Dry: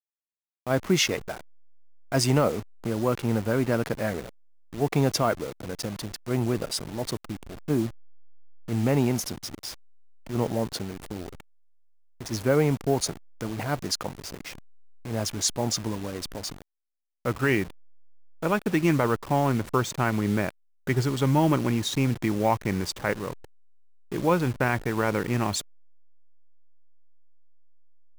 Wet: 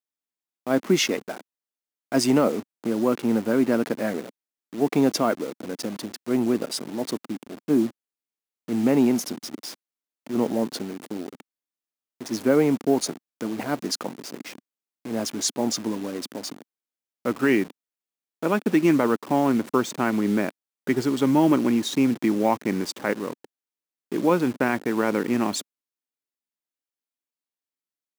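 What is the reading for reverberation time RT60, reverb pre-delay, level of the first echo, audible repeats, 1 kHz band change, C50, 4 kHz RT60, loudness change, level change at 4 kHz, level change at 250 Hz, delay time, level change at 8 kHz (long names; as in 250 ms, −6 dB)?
no reverb audible, no reverb audible, no echo audible, no echo audible, +0.5 dB, no reverb audible, no reverb audible, +2.5 dB, 0.0 dB, +5.5 dB, no echo audible, 0.0 dB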